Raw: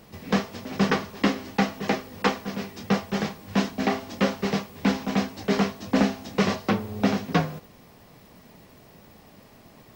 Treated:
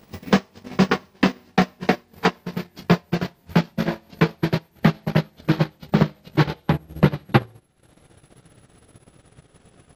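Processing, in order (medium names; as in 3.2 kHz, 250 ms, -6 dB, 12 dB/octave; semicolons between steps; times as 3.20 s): pitch bend over the whole clip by -7.5 st starting unshifted; transient shaper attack +9 dB, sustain -12 dB; trim -1 dB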